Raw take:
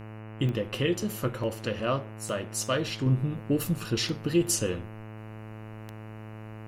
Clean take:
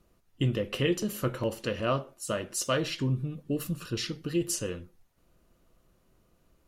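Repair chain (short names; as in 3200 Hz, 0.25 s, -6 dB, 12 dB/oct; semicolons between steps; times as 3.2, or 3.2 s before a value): de-click; de-hum 108.8 Hz, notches 27; gain 0 dB, from 3.06 s -4.5 dB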